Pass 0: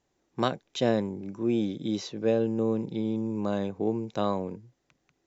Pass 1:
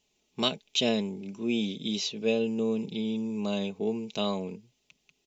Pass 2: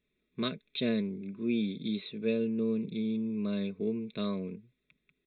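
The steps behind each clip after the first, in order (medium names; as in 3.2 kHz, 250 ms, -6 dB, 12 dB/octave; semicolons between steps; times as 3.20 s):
resonant high shelf 2.1 kHz +8 dB, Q 3; comb 4.7 ms, depth 58%; trim -3.5 dB
resampled via 8 kHz; static phaser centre 3 kHz, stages 6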